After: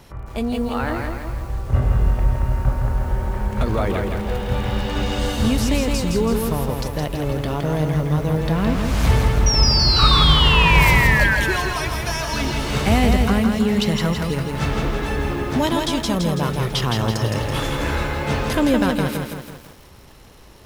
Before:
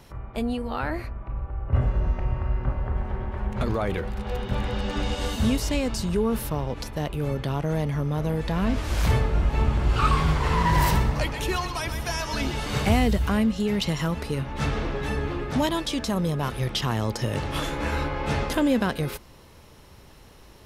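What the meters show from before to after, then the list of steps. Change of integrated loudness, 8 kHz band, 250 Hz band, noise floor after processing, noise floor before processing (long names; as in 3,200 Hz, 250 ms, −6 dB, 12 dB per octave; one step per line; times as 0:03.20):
+6.5 dB, +7.5 dB, +5.5 dB, −43 dBFS, −49 dBFS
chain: sound drawn into the spectrogram fall, 0:09.46–0:11.36, 1,500–5,800 Hz −24 dBFS
feedback echo at a low word length 165 ms, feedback 55%, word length 8 bits, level −4 dB
level +3.5 dB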